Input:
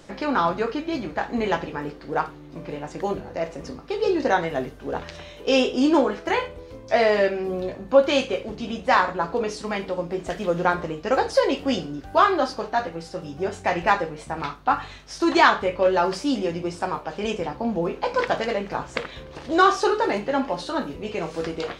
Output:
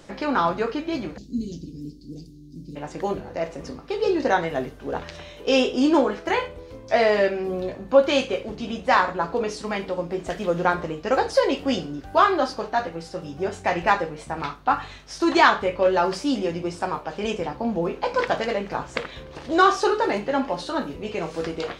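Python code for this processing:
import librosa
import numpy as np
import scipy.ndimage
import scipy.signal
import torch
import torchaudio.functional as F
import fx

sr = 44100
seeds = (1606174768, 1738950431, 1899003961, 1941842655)

y = fx.cheby1_bandstop(x, sr, low_hz=280.0, high_hz=4800.0, order=3, at=(1.16, 2.75), fade=0.02)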